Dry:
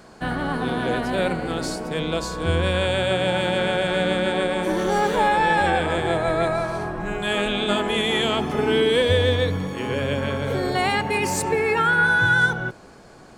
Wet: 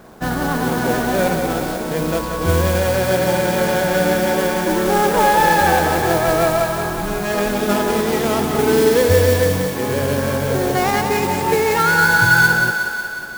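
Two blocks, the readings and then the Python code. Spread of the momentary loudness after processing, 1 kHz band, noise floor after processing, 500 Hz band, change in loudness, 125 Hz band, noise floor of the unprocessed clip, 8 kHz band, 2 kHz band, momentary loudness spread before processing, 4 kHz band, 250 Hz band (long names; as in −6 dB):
8 LU, +5.5 dB, −25 dBFS, +5.5 dB, +5.0 dB, +5.0 dB, −46 dBFS, +9.5 dB, +4.5 dB, 9 LU, 0.0 dB, +5.5 dB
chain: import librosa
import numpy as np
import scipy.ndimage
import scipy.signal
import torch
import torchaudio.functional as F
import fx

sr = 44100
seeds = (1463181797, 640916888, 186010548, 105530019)

y = scipy.ndimage.median_filter(x, 15, mode='constant')
y = fx.mod_noise(y, sr, seeds[0], snr_db=15)
y = fx.echo_thinned(y, sr, ms=182, feedback_pct=68, hz=420.0, wet_db=-6.0)
y = y * 10.0 ** (5.0 / 20.0)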